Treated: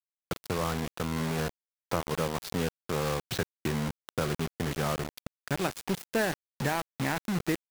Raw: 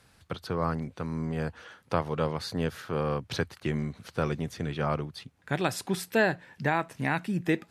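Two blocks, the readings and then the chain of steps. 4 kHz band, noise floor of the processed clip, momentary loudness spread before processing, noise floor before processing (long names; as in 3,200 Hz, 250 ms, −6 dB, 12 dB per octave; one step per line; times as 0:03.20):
+2.0 dB, below −85 dBFS, 6 LU, −62 dBFS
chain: high-shelf EQ 2,600 Hz −5 dB
downward compressor 2 to 1, threshold −33 dBFS, peak gain reduction 7.5 dB
bit reduction 6 bits
level +3 dB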